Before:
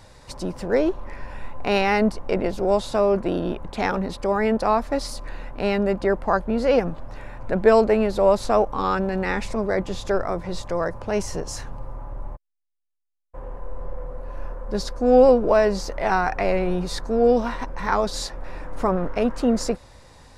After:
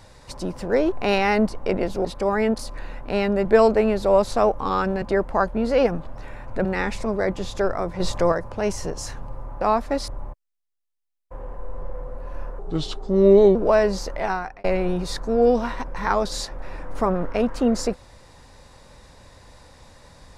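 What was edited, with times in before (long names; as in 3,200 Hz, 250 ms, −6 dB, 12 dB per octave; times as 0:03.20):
0:00.92–0:01.55: remove
0:02.68–0:04.08: remove
0:04.62–0:05.09: move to 0:12.11
0:07.58–0:09.15: move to 0:05.95
0:10.50–0:10.82: clip gain +6 dB
0:14.62–0:15.37: play speed 78%
0:15.93–0:16.46: fade out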